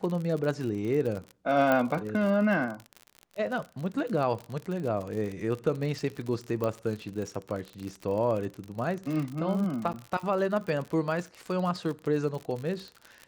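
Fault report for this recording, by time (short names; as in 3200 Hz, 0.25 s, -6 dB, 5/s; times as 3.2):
crackle 61/s -33 dBFS
1.72 pop -13 dBFS
6.64 pop -18 dBFS
9.93–9.94 gap 9.7 ms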